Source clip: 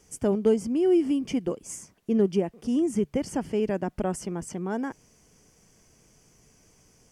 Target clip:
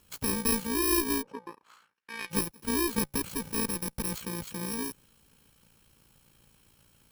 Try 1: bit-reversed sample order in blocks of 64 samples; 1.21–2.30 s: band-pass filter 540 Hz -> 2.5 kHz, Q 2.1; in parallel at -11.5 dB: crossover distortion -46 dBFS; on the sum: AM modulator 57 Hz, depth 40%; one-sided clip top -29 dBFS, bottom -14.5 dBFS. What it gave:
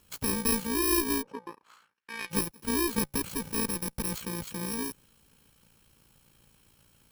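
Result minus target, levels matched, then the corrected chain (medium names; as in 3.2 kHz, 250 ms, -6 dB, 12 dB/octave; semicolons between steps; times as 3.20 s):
crossover distortion: distortion -10 dB
bit-reversed sample order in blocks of 64 samples; 1.21–2.30 s: band-pass filter 540 Hz -> 2.5 kHz, Q 2.1; in parallel at -11.5 dB: crossover distortion -34.5 dBFS; on the sum: AM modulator 57 Hz, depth 40%; one-sided clip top -29 dBFS, bottom -14.5 dBFS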